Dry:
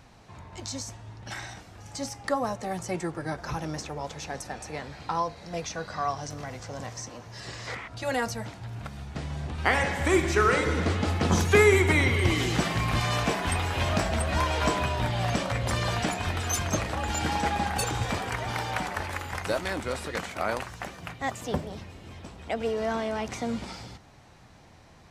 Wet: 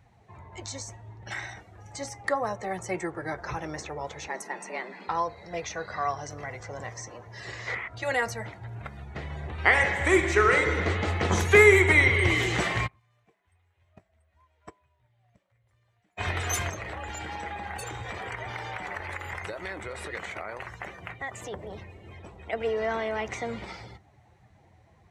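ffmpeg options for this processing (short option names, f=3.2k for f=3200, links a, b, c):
-filter_complex "[0:a]asettb=1/sr,asplit=3[a][b][c];[a]atrim=end=4.284[d];[b]atrim=start=4.28:end=5.08,asetpts=PTS-STARTPTS,afade=t=in:d=0.004:c=qsin,afade=t=out:st=0.796:d=0.004:c=qsin,afreqshift=120[e];[c]atrim=start=5.076[f];[d][e]acrossfade=d=0.004:c1=hsin:c2=qsin[g];[g][f]acrossfade=d=0.004:c1=qsin:c2=hsin,asplit=3[h][i][j];[h]afade=t=out:st=12.86:d=0.02[k];[i]agate=range=-34dB:threshold=-20dB:ratio=16:release=100:detection=peak,afade=t=in:st=12.86:d=0.02,afade=t=out:st=16.17:d=0.02[l];[j]afade=t=in:st=16.17:d=0.02[m];[k][l][m]amix=inputs=3:normalize=0,asettb=1/sr,asplit=3[n][o][p];[n]atrim=end=16.694[q];[o]atrim=start=16.69:end=22.53,asetpts=PTS-STARTPTS,afade=t=in:d=0.004:c=qsin,afade=t=out:st=5.836:d=0.004:c=qsin,acompressor=threshold=-32dB:ratio=8:attack=3.2:release=140:knee=1:detection=peak[r];[p]atrim=start=22.526[s];[q][r]acrossfade=d=0.004:c1=hsin:c2=qsin[t];[t][s]acrossfade=d=0.004:c1=qsin:c2=hsin,highpass=59,afftdn=nr=13:nf=-49,equalizer=f=160:t=o:w=0.33:g=-7,equalizer=f=250:t=o:w=0.33:g=-11,equalizer=f=400:t=o:w=0.33:g=3,equalizer=f=2k:t=o:w=0.33:g=8,equalizer=f=5k:t=o:w=0.33:g=-6"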